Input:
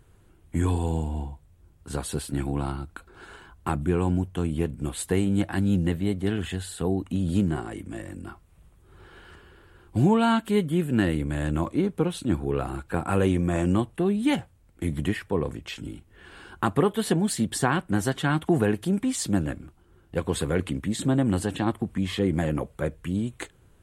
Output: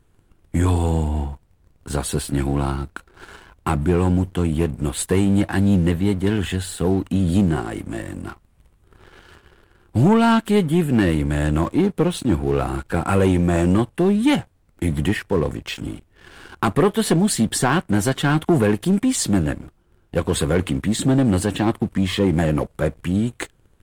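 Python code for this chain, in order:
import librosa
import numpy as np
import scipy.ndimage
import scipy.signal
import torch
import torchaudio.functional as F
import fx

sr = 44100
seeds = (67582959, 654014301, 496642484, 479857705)

y = fx.dmg_noise_colour(x, sr, seeds[0], colour='brown', level_db=-57.0)
y = fx.leveller(y, sr, passes=2)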